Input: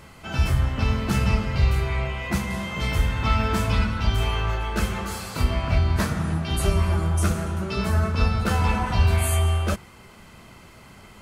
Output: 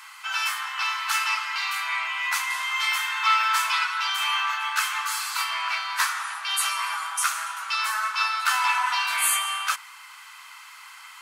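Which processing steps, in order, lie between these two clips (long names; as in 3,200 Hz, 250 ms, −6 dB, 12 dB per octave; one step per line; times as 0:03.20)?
Butterworth high-pass 950 Hz 48 dB per octave
level +7 dB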